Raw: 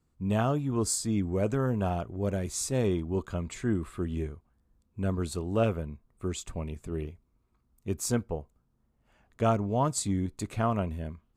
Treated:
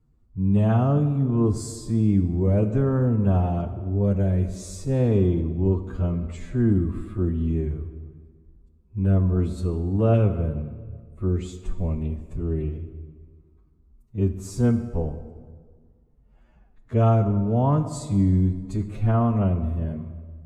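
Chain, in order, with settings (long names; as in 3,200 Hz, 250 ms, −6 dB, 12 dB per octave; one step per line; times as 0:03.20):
spectral tilt −3 dB per octave
phase-vocoder stretch with locked phases 1.8×
on a send: convolution reverb RT60 1.6 s, pre-delay 16 ms, DRR 9.5 dB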